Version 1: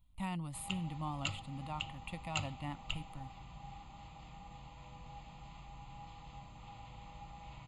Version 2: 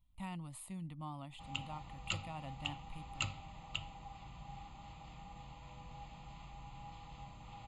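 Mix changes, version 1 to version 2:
speech −5.0 dB
background: entry +0.85 s

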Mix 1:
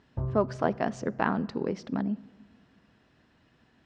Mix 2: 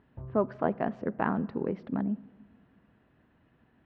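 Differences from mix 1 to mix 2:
speech: add high-frequency loss of the air 490 metres
background −11.0 dB

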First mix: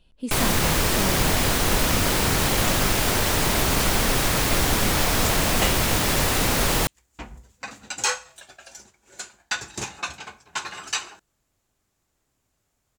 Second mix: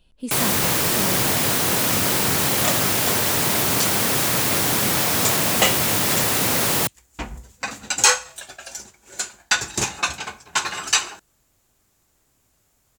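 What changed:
first sound: add high-pass filter 100 Hz 24 dB per octave
second sound +7.0 dB
master: add high-shelf EQ 8,400 Hz +7.5 dB

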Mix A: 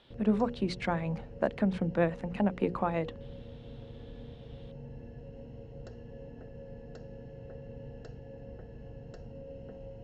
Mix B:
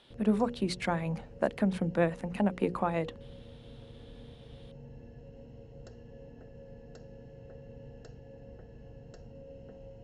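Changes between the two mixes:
background −3.5 dB
master: remove high-frequency loss of the air 91 metres

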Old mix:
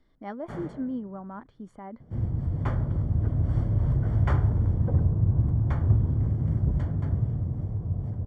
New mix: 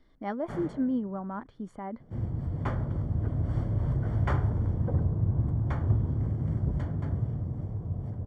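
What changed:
speech +3.5 dB
second sound: add low-shelf EQ 150 Hz −6 dB

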